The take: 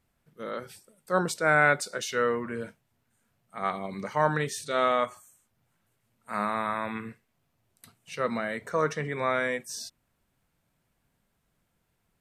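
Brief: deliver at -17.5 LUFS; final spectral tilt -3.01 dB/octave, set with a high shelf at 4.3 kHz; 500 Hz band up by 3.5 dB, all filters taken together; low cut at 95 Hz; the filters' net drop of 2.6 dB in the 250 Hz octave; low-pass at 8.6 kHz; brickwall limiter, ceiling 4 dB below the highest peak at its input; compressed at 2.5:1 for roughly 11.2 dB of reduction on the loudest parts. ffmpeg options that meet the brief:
-af "highpass=95,lowpass=8600,equalizer=f=250:t=o:g=-5,equalizer=f=500:t=o:g=5,highshelf=f=4300:g=5,acompressor=threshold=0.0224:ratio=2.5,volume=8.41,alimiter=limit=0.596:level=0:latency=1"

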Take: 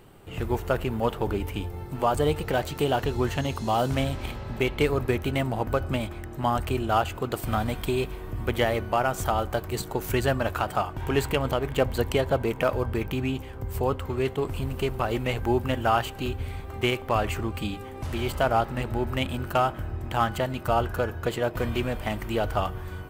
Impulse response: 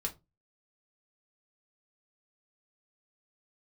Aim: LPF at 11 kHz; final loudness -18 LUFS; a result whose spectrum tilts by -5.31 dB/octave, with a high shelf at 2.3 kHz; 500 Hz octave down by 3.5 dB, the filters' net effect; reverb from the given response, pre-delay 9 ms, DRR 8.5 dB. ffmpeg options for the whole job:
-filter_complex "[0:a]lowpass=11000,equalizer=f=500:t=o:g=-4.5,highshelf=f=2300:g=-3,asplit=2[s0][s1];[1:a]atrim=start_sample=2205,adelay=9[s2];[s1][s2]afir=irnorm=-1:irlink=0,volume=0.335[s3];[s0][s3]amix=inputs=2:normalize=0,volume=3.35"

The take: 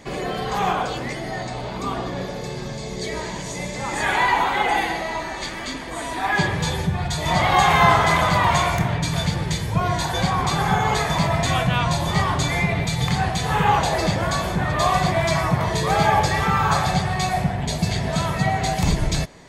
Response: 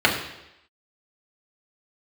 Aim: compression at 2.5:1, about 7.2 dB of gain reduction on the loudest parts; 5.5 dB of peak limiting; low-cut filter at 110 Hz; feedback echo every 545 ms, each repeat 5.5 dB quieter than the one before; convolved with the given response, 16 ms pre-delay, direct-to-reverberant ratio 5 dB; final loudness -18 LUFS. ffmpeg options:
-filter_complex "[0:a]highpass=110,acompressor=threshold=0.0794:ratio=2.5,alimiter=limit=0.15:level=0:latency=1,aecho=1:1:545|1090|1635|2180|2725|3270|3815:0.531|0.281|0.149|0.079|0.0419|0.0222|0.0118,asplit=2[s0][s1];[1:a]atrim=start_sample=2205,adelay=16[s2];[s1][s2]afir=irnorm=-1:irlink=0,volume=0.0531[s3];[s0][s3]amix=inputs=2:normalize=0,volume=2"

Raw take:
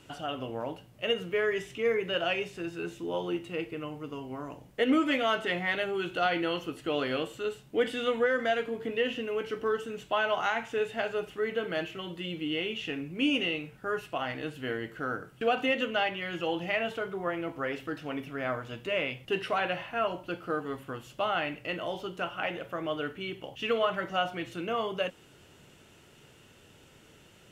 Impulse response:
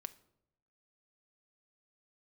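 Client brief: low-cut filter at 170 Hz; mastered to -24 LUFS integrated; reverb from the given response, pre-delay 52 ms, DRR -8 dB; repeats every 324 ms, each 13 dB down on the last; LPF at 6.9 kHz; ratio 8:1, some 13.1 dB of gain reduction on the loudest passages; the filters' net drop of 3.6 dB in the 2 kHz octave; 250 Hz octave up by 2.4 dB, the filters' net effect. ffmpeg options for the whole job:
-filter_complex "[0:a]highpass=170,lowpass=6900,equalizer=f=250:t=o:g=4,equalizer=f=2000:t=o:g=-5,acompressor=threshold=0.0251:ratio=8,aecho=1:1:324|648|972:0.224|0.0493|0.0108,asplit=2[s0][s1];[1:a]atrim=start_sample=2205,adelay=52[s2];[s1][s2]afir=irnorm=-1:irlink=0,volume=3.98[s3];[s0][s3]amix=inputs=2:normalize=0,volume=1.68"

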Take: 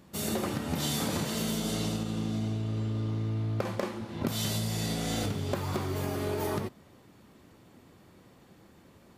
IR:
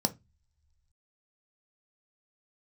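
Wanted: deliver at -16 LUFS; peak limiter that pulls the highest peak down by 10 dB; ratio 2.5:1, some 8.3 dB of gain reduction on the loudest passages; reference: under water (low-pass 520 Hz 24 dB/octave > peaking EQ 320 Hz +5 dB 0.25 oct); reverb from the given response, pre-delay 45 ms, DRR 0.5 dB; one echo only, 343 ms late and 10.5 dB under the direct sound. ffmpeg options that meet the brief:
-filter_complex "[0:a]acompressor=threshold=0.0112:ratio=2.5,alimiter=level_in=2.99:limit=0.0631:level=0:latency=1,volume=0.335,aecho=1:1:343:0.299,asplit=2[s0][s1];[1:a]atrim=start_sample=2205,adelay=45[s2];[s1][s2]afir=irnorm=-1:irlink=0,volume=0.473[s3];[s0][s3]amix=inputs=2:normalize=0,lowpass=f=520:w=0.5412,lowpass=f=520:w=1.3066,equalizer=f=320:t=o:w=0.25:g=5,volume=8.41"

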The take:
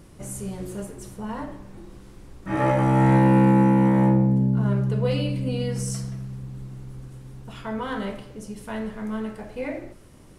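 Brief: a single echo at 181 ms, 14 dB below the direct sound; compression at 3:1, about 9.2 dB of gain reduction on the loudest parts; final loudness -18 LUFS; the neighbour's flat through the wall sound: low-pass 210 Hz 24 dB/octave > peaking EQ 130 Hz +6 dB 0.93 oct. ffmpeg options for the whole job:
-af "acompressor=threshold=0.0447:ratio=3,lowpass=f=210:w=0.5412,lowpass=f=210:w=1.3066,equalizer=f=130:t=o:w=0.93:g=6,aecho=1:1:181:0.2,volume=3.98"

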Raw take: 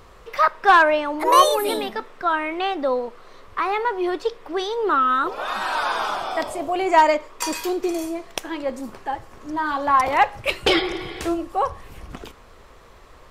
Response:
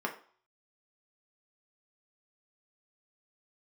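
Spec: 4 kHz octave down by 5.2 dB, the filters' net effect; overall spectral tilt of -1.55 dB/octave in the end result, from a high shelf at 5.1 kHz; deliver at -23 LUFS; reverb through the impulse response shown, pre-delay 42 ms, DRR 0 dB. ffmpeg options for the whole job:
-filter_complex "[0:a]equalizer=f=4000:t=o:g=-5,highshelf=f=5100:g=-5,asplit=2[s0][s1];[1:a]atrim=start_sample=2205,adelay=42[s2];[s1][s2]afir=irnorm=-1:irlink=0,volume=0.501[s3];[s0][s3]amix=inputs=2:normalize=0,volume=0.562"

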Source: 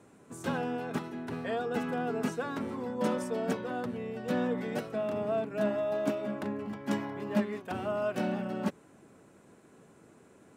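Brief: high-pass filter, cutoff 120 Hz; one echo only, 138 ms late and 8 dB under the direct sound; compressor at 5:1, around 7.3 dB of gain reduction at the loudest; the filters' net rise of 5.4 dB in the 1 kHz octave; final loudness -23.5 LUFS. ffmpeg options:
-af "highpass=120,equalizer=f=1000:t=o:g=7.5,acompressor=threshold=0.0282:ratio=5,aecho=1:1:138:0.398,volume=3.76"

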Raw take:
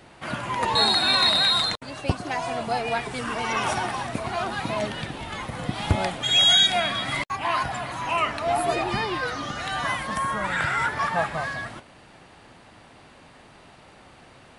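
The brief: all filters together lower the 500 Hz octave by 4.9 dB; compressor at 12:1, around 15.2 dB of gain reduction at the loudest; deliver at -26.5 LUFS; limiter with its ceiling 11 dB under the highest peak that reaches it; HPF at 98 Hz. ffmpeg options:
-af "highpass=98,equalizer=f=500:t=o:g=-7.5,acompressor=threshold=0.0316:ratio=12,volume=3.35,alimiter=limit=0.112:level=0:latency=1"

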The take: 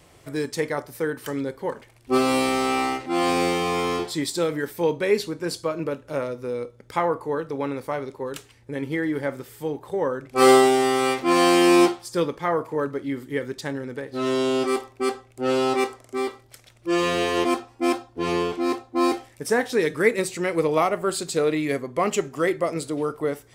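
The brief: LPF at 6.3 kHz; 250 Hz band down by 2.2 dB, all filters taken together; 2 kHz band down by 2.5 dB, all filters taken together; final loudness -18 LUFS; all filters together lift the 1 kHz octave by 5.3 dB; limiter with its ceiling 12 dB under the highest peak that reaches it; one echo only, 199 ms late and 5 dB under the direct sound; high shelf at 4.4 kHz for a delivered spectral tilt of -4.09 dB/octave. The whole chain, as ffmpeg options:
-af "lowpass=6300,equalizer=f=250:t=o:g=-4,equalizer=f=1000:t=o:g=8.5,equalizer=f=2000:t=o:g=-4,highshelf=f=4400:g=-7.5,alimiter=limit=0.188:level=0:latency=1,aecho=1:1:199:0.562,volume=2.24"

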